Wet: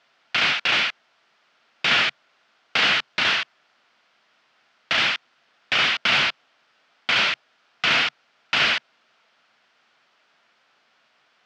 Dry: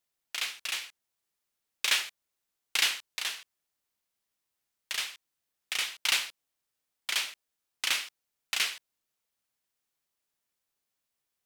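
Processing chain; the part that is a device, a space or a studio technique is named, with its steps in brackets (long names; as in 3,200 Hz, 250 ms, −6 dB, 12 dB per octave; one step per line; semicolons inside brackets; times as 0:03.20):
overdrive pedal into a guitar cabinet (mid-hump overdrive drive 34 dB, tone 7,300 Hz, clips at −10.5 dBFS; loudspeaker in its box 95–4,300 Hz, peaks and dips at 140 Hz +6 dB, 230 Hz +6 dB, 670 Hz +5 dB, 1,400 Hz +6 dB, 3,900 Hz −4 dB)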